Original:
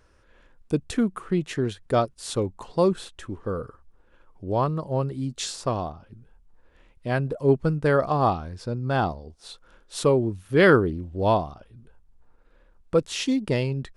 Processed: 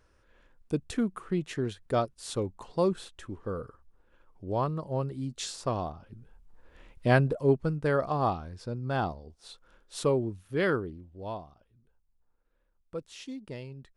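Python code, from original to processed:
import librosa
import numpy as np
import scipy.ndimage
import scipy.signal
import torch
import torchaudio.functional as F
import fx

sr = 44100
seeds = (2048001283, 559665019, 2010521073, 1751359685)

y = fx.gain(x, sr, db=fx.line((5.52, -5.5), (7.07, 4.5), (7.59, -6.0), (10.16, -6.0), (11.24, -16.5)))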